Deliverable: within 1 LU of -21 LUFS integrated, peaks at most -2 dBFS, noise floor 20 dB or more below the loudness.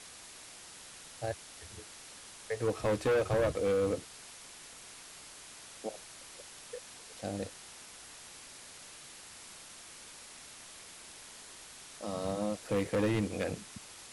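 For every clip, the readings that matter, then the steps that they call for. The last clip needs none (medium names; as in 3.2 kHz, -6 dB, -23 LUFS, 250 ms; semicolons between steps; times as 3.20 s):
clipped samples 1.3%; clipping level -25.0 dBFS; noise floor -51 dBFS; noise floor target -55 dBFS; loudness -35.0 LUFS; peak level -25.0 dBFS; loudness target -21.0 LUFS
-> clip repair -25 dBFS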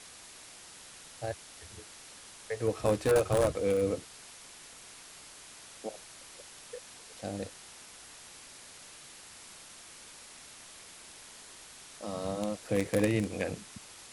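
clipped samples 0.0%; noise floor -51 dBFS; noise floor target -53 dBFS
-> noise print and reduce 6 dB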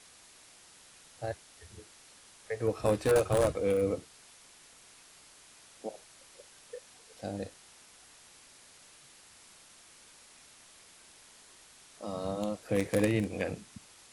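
noise floor -57 dBFS; loudness -32.0 LUFS; peak level -16.0 dBFS; loudness target -21.0 LUFS
-> trim +11 dB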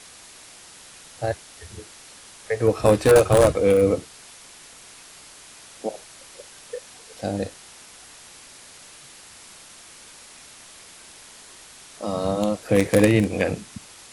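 loudness -21.0 LUFS; peak level -5.0 dBFS; noise floor -46 dBFS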